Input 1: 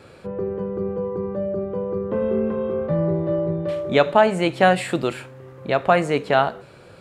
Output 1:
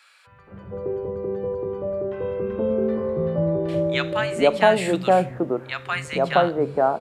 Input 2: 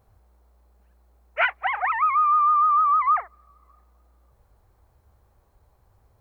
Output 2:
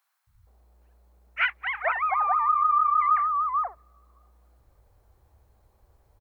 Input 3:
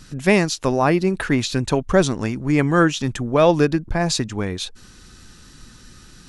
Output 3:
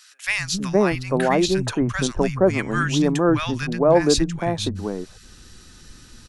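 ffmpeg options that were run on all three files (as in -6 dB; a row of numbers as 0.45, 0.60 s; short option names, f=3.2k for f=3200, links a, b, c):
-filter_complex "[0:a]acrossover=split=170|1200[a][b][c];[a]adelay=270[d];[b]adelay=470[e];[d][e][c]amix=inputs=3:normalize=0"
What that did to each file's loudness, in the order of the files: -1.0, -3.5, -1.5 LU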